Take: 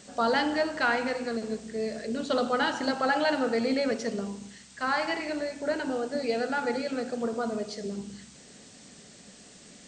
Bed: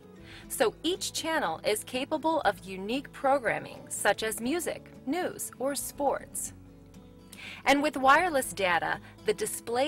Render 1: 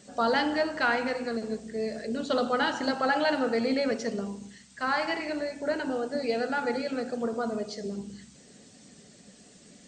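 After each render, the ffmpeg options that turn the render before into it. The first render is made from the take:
-af "afftdn=nr=6:nf=-52"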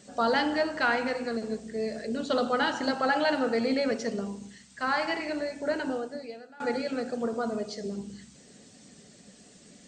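-filter_complex "[0:a]asplit=2[s0][s1];[s0]atrim=end=6.6,asetpts=PTS-STARTPTS,afade=t=out:st=5.9:d=0.7:c=qua:silence=0.0707946[s2];[s1]atrim=start=6.6,asetpts=PTS-STARTPTS,afade=t=in:d=0.004:c=hsin:silence=0.0707946[s3];[s2][s3]concat=n=2:v=0:a=1"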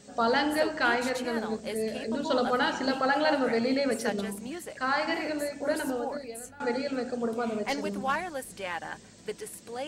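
-filter_complex "[1:a]volume=0.376[s0];[0:a][s0]amix=inputs=2:normalize=0"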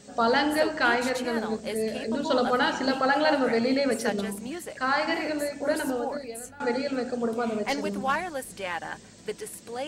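-af "volume=1.33"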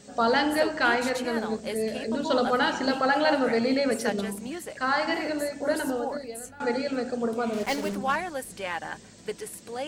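-filter_complex "[0:a]asettb=1/sr,asplit=3[s0][s1][s2];[s0]atrim=end=4.854[s3];[s1]atrim=start=4.85:end=6.45,asetpts=PTS-STARTPTS,afade=t=in:d=0.004:c=qsin,afade=t=out:st=1.596:d=0.004:c=qsin,bandreject=f=2400:w=9.5[s4];[s2]atrim=start=6.446[s5];[s3][s4]acrossfade=d=0.004:c1=hsin:c2=qsin[s6];[s6][s5]acrossfade=d=0.004:c1=qsin:c2=hsin,asettb=1/sr,asplit=3[s7][s8][s9];[s7]atrim=end=7.534[s10];[s8]atrim=start=7.53:end=7.96,asetpts=PTS-STARTPTS,afade=t=in:d=0.004:c=qsin,afade=t=out:st=0.426:d=0.004:c=qsin,acrusher=bits=5:mix=0:aa=0.5[s11];[s9]atrim=start=7.956[s12];[s10][s11]acrossfade=d=0.004:c1=hsin:c2=qsin[s13];[s13][s12]acrossfade=d=0.004:c1=qsin:c2=hsin"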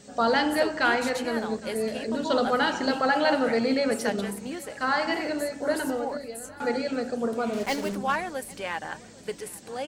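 -af "aecho=1:1:809|1618|2427|3236:0.0708|0.0382|0.0206|0.0111"

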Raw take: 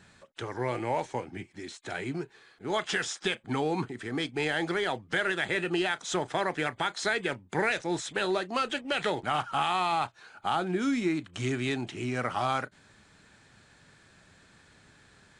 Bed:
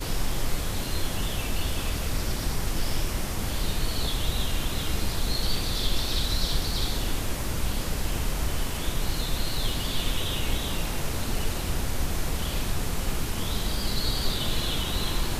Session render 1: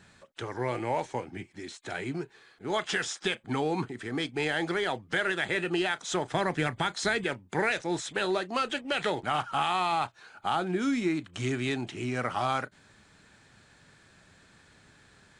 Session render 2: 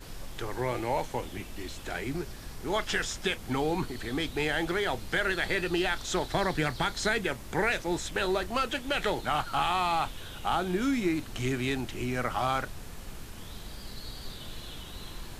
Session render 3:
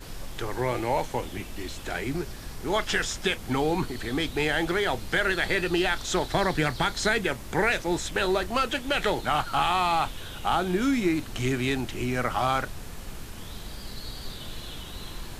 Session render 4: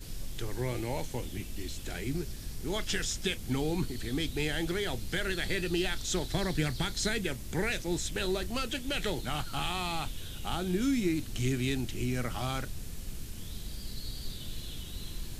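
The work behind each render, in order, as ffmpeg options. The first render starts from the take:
-filter_complex "[0:a]asettb=1/sr,asplit=3[s0][s1][s2];[s0]atrim=end=6.324[s3];[s1]atrim=start=6.32:end=7.24,asetpts=PTS-STARTPTS,afade=t=in:d=0.004:c=qsin,afade=t=out:st=0.916:d=0.004:c=qsin,bass=f=250:g=9,treble=f=4000:g=2[s4];[s2]atrim=start=7.236[s5];[s3][s4]acrossfade=d=0.004:c1=hsin:c2=qsin[s6];[s6][s5]acrossfade=d=0.004:c1=qsin:c2=hsin"
-filter_complex "[1:a]volume=0.188[s0];[0:a][s0]amix=inputs=2:normalize=0"
-af "volume=1.5"
-af "equalizer=f=990:t=o:w=2.5:g=-14"

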